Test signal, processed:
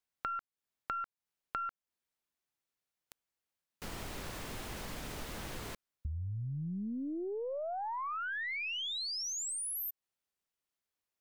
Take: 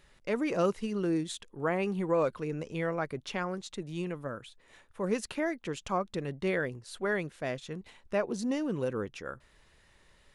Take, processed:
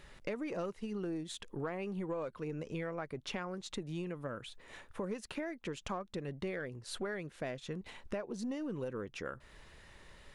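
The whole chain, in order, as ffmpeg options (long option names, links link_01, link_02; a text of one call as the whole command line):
ffmpeg -i in.wav -af "highshelf=frequency=4200:gain=-4.5,aeval=exprs='0.178*(cos(1*acos(clip(val(0)/0.178,-1,1)))-cos(1*PI/2))+0.00501*(cos(6*acos(clip(val(0)/0.178,-1,1)))-cos(6*PI/2))':channel_layout=same,acompressor=threshold=-44dB:ratio=6,volume=6.5dB" out.wav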